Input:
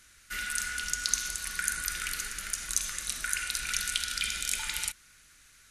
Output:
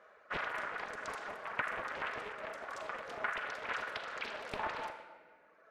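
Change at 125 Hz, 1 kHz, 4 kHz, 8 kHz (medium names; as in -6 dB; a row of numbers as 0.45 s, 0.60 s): -7.5 dB, +3.0 dB, -15.5 dB, -31.0 dB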